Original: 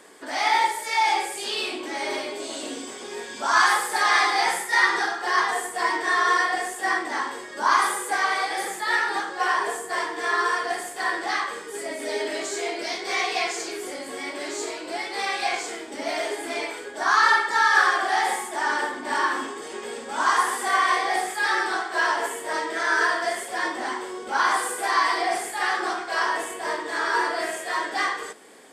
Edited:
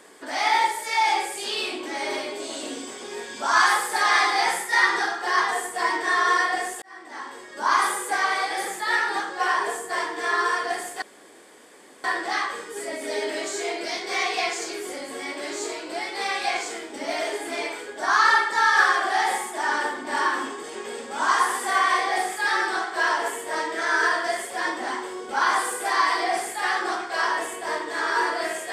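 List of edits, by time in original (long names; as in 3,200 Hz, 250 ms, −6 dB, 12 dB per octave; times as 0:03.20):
0:06.82–0:07.85: fade in
0:11.02: splice in room tone 1.02 s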